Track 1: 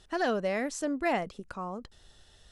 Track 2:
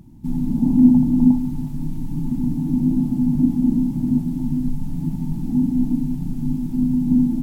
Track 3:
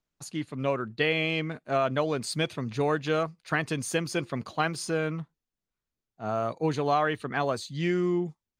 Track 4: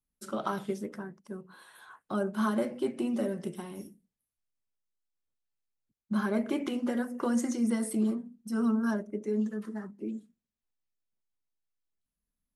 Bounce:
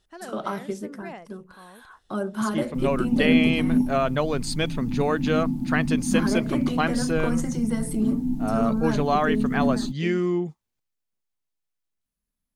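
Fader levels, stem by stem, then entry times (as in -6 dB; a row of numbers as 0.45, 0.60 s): -11.0, -7.0, +2.5, +2.5 dB; 0.00, 2.50, 2.20, 0.00 s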